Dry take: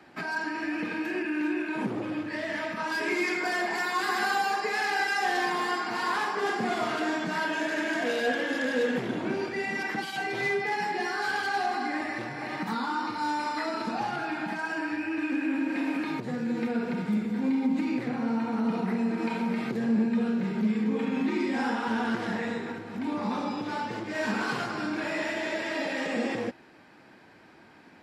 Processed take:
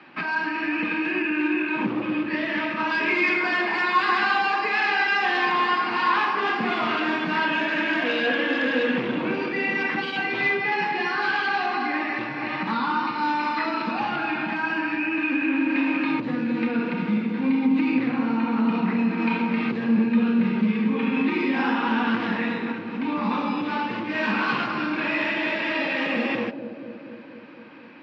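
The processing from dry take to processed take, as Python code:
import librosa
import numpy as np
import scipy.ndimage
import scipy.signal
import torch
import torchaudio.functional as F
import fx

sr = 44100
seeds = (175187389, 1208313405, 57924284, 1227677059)

p1 = fx.cabinet(x, sr, low_hz=150.0, low_slope=12, high_hz=4200.0, hz=(420.0, 690.0, 1100.0, 2600.0), db=(-6, -6, 5, 8))
p2 = p1 + fx.echo_bbd(p1, sr, ms=237, stages=1024, feedback_pct=73, wet_db=-9, dry=0)
y = p2 * librosa.db_to_amplitude(5.0)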